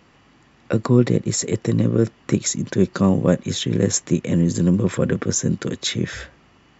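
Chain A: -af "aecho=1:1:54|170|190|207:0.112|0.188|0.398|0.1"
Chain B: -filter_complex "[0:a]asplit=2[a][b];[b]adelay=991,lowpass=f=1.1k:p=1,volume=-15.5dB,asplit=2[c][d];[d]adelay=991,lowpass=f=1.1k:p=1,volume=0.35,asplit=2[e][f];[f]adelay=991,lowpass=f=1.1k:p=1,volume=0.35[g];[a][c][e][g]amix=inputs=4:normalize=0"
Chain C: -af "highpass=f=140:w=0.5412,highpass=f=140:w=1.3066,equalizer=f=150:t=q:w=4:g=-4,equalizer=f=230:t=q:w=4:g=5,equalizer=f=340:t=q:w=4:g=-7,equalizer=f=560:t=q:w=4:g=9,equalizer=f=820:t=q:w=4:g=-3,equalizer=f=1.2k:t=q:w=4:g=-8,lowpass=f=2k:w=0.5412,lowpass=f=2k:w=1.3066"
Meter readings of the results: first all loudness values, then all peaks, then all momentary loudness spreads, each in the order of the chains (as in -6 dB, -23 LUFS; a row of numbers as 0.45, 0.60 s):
-19.5, -20.5, -21.0 LUFS; -2.5, -3.0, -2.5 dBFS; 7, 7, 10 LU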